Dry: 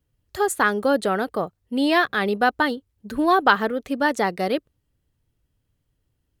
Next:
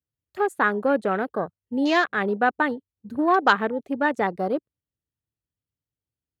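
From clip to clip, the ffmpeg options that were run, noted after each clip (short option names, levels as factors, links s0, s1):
-af "highpass=75,afwtdn=0.0282,volume=0.841"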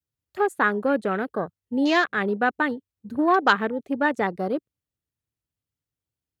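-af "adynamicequalizer=threshold=0.02:dfrequency=760:dqfactor=1:tfrequency=760:tqfactor=1:attack=5:release=100:ratio=0.375:range=3:mode=cutabove:tftype=bell,volume=1.12"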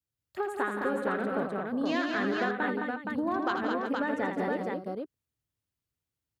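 -af "acompressor=threshold=0.0501:ratio=6,aecho=1:1:81|170|214|360|469:0.473|0.355|0.631|0.266|0.668,volume=0.708"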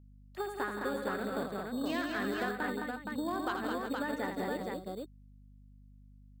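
-filter_complex "[0:a]acrossover=split=510|890[s0][s1][s2];[s0]acrusher=samples=11:mix=1:aa=0.000001[s3];[s3][s1][s2]amix=inputs=3:normalize=0,aeval=exprs='val(0)+0.00316*(sin(2*PI*50*n/s)+sin(2*PI*2*50*n/s)/2+sin(2*PI*3*50*n/s)/3+sin(2*PI*4*50*n/s)/4+sin(2*PI*5*50*n/s)/5)':c=same,volume=0.562"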